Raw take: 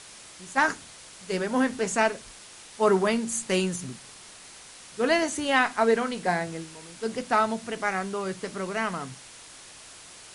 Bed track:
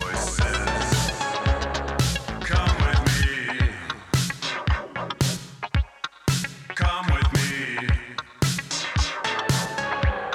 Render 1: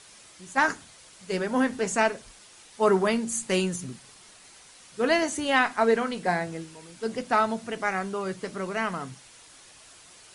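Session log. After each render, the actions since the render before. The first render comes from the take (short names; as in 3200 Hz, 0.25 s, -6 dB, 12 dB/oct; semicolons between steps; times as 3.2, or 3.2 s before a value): denoiser 6 dB, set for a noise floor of -47 dBFS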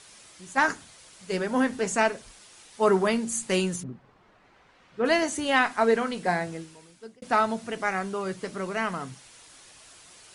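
3.82–5.04 LPF 1000 Hz -> 2400 Hz; 6.48–7.22 fade out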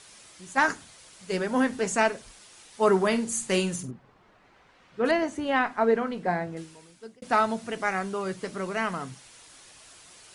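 3.07–3.91 flutter echo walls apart 8 m, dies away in 0.23 s; 5.11–6.57 LPF 1400 Hz 6 dB/oct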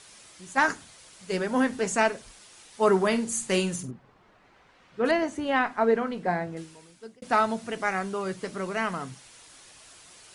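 nothing audible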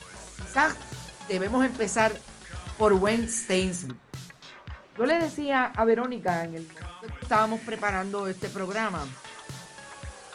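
add bed track -19 dB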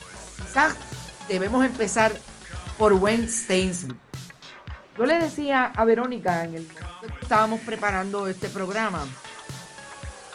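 gain +3 dB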